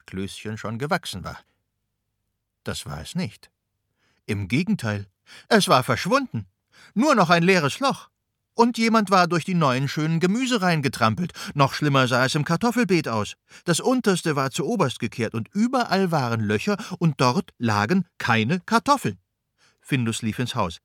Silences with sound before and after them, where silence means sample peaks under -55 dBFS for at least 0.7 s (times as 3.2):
1.43–2.66